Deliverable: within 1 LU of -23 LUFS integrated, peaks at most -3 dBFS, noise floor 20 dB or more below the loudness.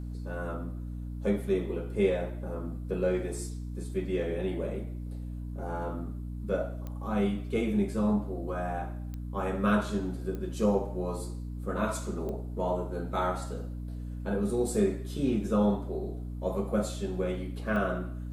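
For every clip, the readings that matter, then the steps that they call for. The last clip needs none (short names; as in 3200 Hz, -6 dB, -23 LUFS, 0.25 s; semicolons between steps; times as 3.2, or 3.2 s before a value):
clicks 5; hum 60 Hz; harmonics up to 300 Hz; hum level -35 dBFS; loudness -32.0 LUFS; peak -13.5 dBFS; loudness target -23.0 LUFS
-> de-click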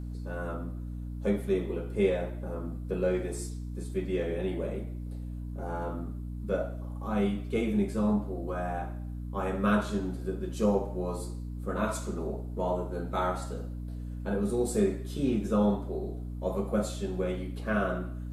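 clicks 0; hum 60 Hz; harmonics up to 300 Hz; hum level -35 dBFS
-> de-hum 60 Hz, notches 5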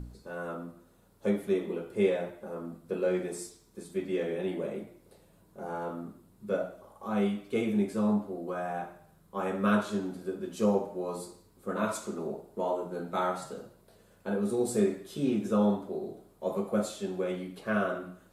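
hum none; loudness -32.5 LUFS; peak -14.5 dBFS; loudness target -23.0 LUFS
-> gain +9.5 dB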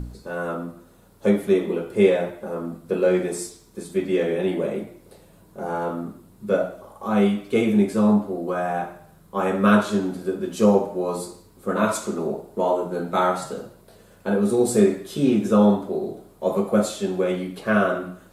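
loudness -23.0 LUFS; peak -5.0 dBFS; noise floor -52 dBFS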